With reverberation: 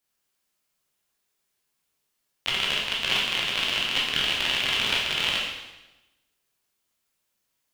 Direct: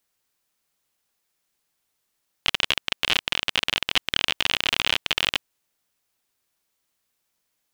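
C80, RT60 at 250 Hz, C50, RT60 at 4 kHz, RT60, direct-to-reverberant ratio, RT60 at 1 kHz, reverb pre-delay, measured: 4.5 dB, 1.1 s, 1.5 dB, 1.0 s, 1.0 s, -4.5 dB, 1.0 s, 12 ms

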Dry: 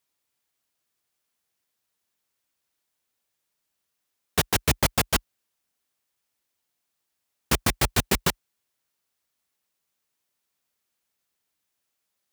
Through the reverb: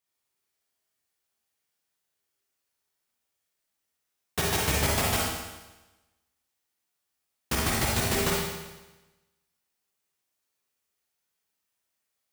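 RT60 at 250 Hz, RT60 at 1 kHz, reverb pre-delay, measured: 1.1 s, 1.1 s, 34 ms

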